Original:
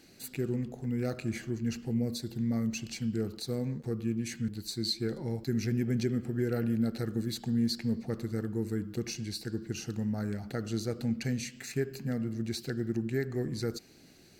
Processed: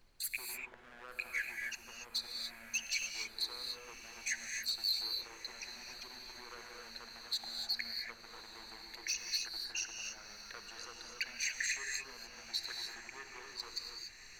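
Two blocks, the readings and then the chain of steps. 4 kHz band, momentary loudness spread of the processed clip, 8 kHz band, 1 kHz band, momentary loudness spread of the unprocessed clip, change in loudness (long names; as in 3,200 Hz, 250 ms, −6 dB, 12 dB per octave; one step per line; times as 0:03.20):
+3.5 dB, 13 LU, +3.0 dB, −2.5 dB, 6 LU, −6.0 dB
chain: spectral envelope exaggerated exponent 2
noise gate −53 dBFS, range −25 dB
brickwall limiter −25.5 dBFS, peak gain reduction 6 dB
downward compressor, threshold −33 dBFS, peak gain reduction 5 dB
gain into a clipping stage and back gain 34 dB
high-pass with resonance 1,600 Hz, resonance Q 1.9
background noise brown −71 dBFS
on a send: feedback delay with all-pass diffusion 1,187 ms, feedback 68%, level −15.5 dB
on the sum: reverb whose tail is shaped and stops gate 310 ms rising, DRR 2.5 dB
one half of a high-frequency compander encoder only
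level +4 dB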